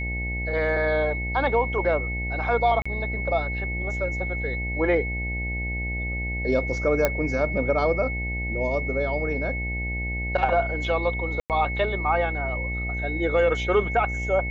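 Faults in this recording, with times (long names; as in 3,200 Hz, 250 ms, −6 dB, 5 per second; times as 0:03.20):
mains buzz 60 Hz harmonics 15 −30 dBFS
whistle 2,200 Hz −30 dBFS
0:02.82–0:02.85: drop-out 35 ms
0:07.05: click −6 dBFS
0:11.40–0:11.50: drop-out 98 ms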